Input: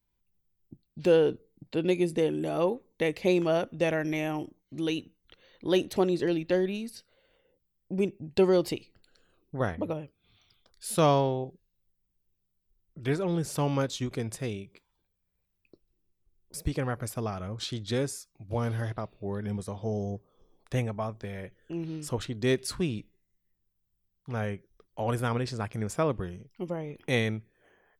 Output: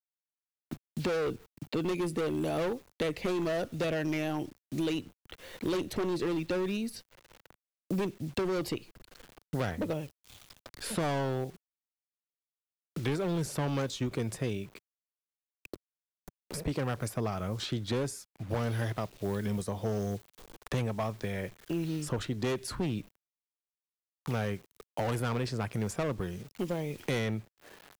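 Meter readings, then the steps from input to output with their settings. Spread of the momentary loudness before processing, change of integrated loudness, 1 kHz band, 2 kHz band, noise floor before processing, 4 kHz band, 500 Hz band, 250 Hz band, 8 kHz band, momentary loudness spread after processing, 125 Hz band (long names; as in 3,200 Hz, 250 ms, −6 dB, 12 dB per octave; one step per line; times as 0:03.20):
14 LU, −4.0 dB, −3.5 dB, −2.5 dB, −79 dBFS, −2.5 dB, −5.0 dB, −2.5 dB, −2.0 dB, 11 LU, −1.5 dB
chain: gain into a clipping stage and back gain 27.5 dB
bit-depth reduction 10 bits, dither none
multiband upward and downward compressor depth 70%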